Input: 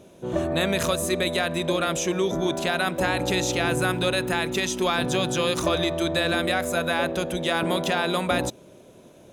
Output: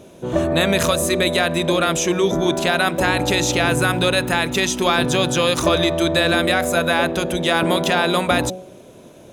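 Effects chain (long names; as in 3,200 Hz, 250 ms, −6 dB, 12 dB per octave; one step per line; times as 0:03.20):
hum removal 184.8 Hz, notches 4
level +6.5 dB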